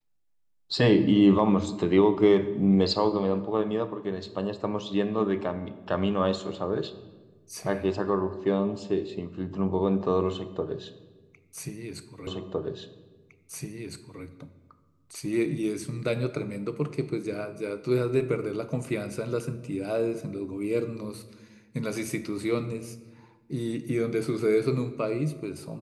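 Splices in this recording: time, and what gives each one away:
0:12.27: the same again, the last 1.96 s

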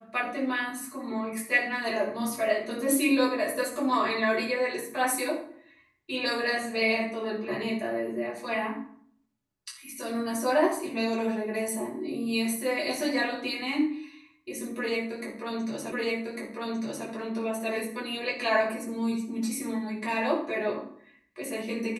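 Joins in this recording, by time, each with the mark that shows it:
0:15.92: the same again, the last 1.15 s

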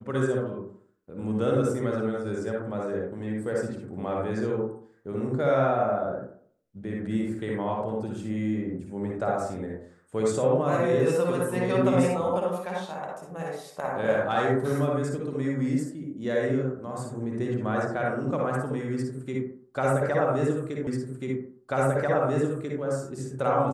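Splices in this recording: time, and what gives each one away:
0:20.87: the same again, the last 1.94 s

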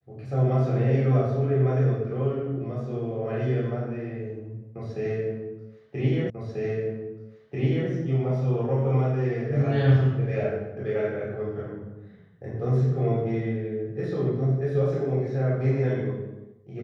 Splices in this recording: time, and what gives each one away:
0:06.30: the same again, the last 1.59 s

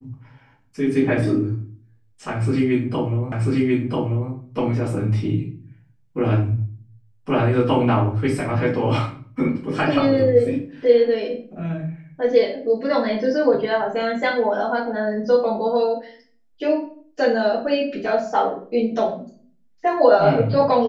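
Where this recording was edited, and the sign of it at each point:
0:03.32: the same again, the last 0.99 s

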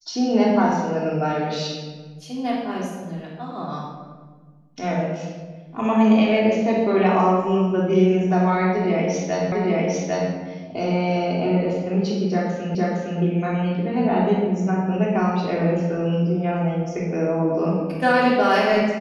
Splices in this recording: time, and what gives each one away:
0:09.52: the same again, the last 0.8 s
0:12.75: the same again, the last 0.46 s

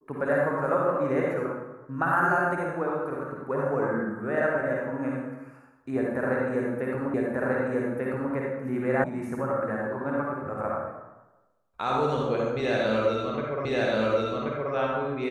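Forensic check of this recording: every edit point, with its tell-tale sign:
0:07.14: the same again, the last 1.19 s
0:09.04: cut off before it has died away
0:13.65: the same again, the last 1.08 s

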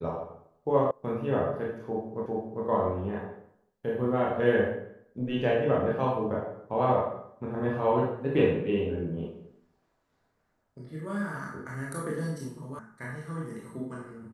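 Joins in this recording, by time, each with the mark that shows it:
0:00.91: cut off before it has died away
0:02.26: the same again, the last 0.4 s
0:12.79: cut off before it has died away

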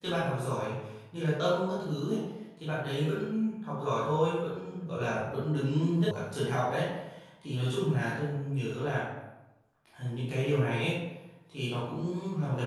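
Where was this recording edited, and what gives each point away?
0:06.11: cut off before it has died away

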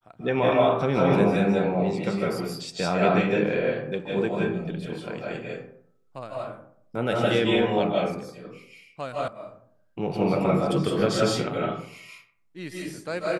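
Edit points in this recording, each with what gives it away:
0:09.28: cut off before it has died away

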